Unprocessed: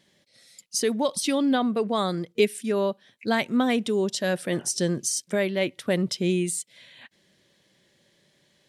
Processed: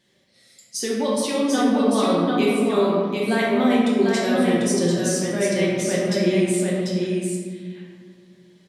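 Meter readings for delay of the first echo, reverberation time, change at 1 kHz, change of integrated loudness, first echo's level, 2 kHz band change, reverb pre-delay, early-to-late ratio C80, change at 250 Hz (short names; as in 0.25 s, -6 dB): 0.744 s, 1.9 s, +5.0 dB, +4.5 dB, -4.0 dB, +4.0 dB, 3 ms, -1.5 dB, +6.5 dB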